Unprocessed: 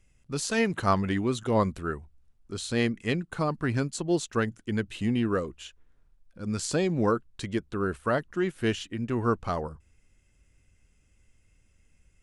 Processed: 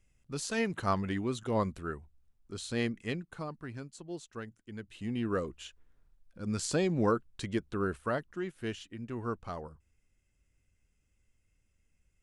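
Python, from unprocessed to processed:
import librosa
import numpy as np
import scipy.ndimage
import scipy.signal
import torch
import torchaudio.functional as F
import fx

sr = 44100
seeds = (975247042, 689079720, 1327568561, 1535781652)

y = fx.gain(x, sr, db=fx.line((2.99, -6.0), (3.73, -15.5), (4.73, -15.5), (5.44, -3.0), (7.81, -3.0), (8.5, -10.0)))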